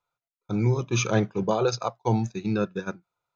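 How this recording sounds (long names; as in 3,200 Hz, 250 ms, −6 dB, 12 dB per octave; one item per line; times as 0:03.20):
background noise floor −94 dBFS
spectral slope −6.0 dB per octave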